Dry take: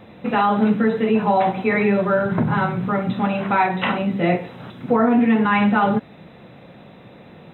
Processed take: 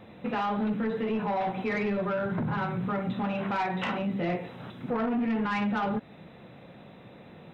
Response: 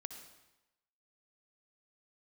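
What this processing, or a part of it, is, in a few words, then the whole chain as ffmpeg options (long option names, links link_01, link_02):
soft clipper into limiter: -af "asoftclip=type=tanh:threshold=-14dB,alimiter=limit=-18dB:level=0:latency=1:release=144,volume=-5.5dB"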